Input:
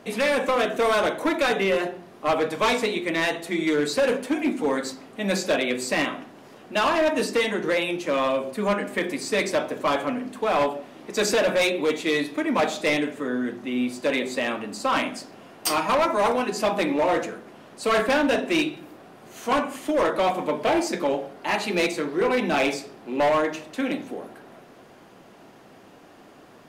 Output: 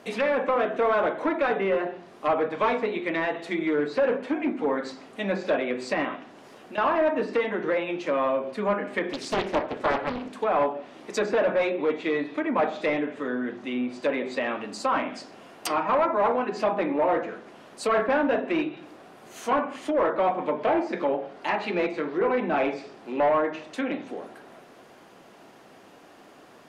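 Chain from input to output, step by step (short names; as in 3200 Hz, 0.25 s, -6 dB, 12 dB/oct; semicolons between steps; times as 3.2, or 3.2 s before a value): treble ducked by the level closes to 1600 Hz, closed at -20.5 dBFS; low shelf 220 Hz -7.5 dB; 6.15–6.78 compressor, threshold -37 dBFS, peak gain reduction 13.5 dB; 9.13–10.35 Doppler distortion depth 0.75 ms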